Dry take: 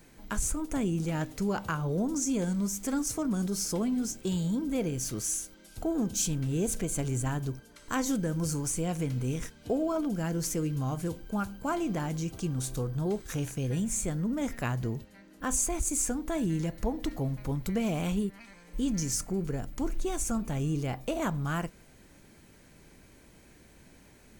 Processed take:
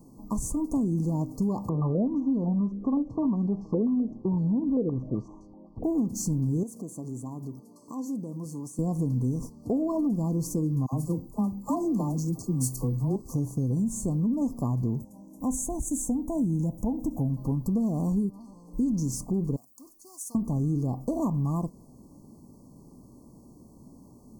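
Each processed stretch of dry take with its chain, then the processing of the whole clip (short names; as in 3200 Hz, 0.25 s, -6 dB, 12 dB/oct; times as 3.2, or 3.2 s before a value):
1.69–5.84 air absorption 110 m + stepped low-pass 7.8 Hz 460–2600 Hz
6.63–8.79 HPF 190 Hz + compressor 2.5:1, threshold -43 dBFS
10.86–13.16 high shelf 3700 Hz +8 dB + dispersion lows, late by 61 ms, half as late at 710 Hz + three-band expander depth 70%
15–17.3 inverse Chebyshev band-stop 1600–3600 Hz, stop band 50 dB + bell 390 Hz -6.5 dB 0.5 oct + mismatched tape noise reduction encoder only
19.56–20.35 differentiator + notch 7600 Hz, Q 19 + Doppler distortion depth 0.4 ms
whole clip: FFT band-reject 1200–4200 Hz; ten-band EQ 125 Hz +7 dB, 250 Hz +11 dB, 1000 Hz +4 dB, 4000 Hz -8 dB; compressor, threshold -21 dBFS; gain -2 dB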